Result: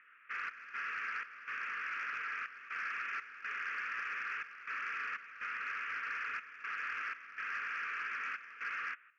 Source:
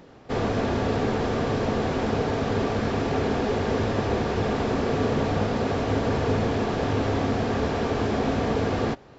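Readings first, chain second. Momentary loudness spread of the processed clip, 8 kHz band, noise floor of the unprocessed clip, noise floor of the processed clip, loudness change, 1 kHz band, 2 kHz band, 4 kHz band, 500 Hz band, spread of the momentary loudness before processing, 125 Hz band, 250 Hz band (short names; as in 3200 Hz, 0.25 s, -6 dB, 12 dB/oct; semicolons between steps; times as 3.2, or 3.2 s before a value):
4 LU, n/a, -48 dBFS, -61 dBFS, -14.0 dB, -13.5 dB, -1.5 dB, -17.5 dB, under -40 dB, 1 LU, under -40 dB, under -40 dB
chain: elliptic band-pass 1300–2600 Hz, stop band 40 dB; soft clip -30.5 dBFS, distortion -23 dB; step gate "xx.xx.xx" 61 bpm -12 dB; gain +1 dB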